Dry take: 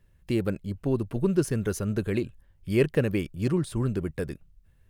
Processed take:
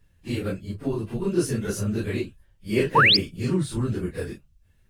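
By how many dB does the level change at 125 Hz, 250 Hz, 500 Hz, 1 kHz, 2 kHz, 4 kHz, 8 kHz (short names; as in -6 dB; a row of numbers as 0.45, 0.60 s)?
+0.5, +0.5, 0.0, +17.0, +13.5, +20.5, +4.0 dB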